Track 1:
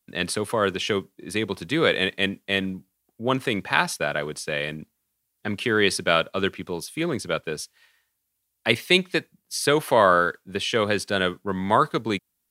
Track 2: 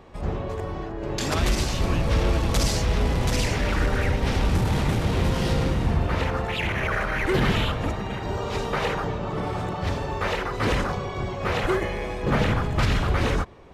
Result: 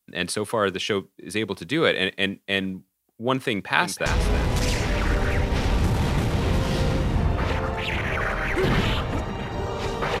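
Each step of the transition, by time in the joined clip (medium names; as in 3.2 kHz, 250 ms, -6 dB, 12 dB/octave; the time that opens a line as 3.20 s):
track 1
3.49–4.06 s: echo throw 320 ms, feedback 35%, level -9 dB
4.06 s: go over to track 2 from 2.77 s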